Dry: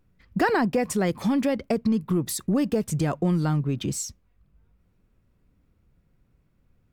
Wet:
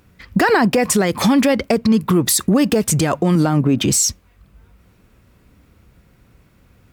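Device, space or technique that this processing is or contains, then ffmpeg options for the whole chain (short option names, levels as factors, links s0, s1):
mastering chain: -filter_complex "[0:a]asettb=1/sr,asplit=3[s0][s1][s2];[s0]atrim=end=3.354[s3];[s1]atrim=start=3.35:end=3.83,asetpts=PTS-STARTPTS,afade=t=in:d=0.004:c=qsin,afade=t=out:st=0.476:d=0.004:c=qsin,equalizer=f=250:t=o:w=0.67:g=8,equalizer=f=630:t=o:w=0.67:g=7,equalizer=f=4000:t=o:w=0.67:g=-5[s4];[s2]atrim=start=3.826[s5];[s3][s4]acrossfade=d=0.004:c1=hsin:c2=qsin[s6];[s6][s5]acrossfade=d=0.004:c1=qsin:c2=hsin,highpass=43,equalizer=f=150:t=o:w=0.38:g=-3.5,acompressor=threshold=0.0501:ratio=2.5,tiltshelf=f=770:g=-3,asoftclip=type=hard:threshold=0.112,alimiter=level_in=15:limit=0.891:release=50:level=0:latency=1,volume=0.501"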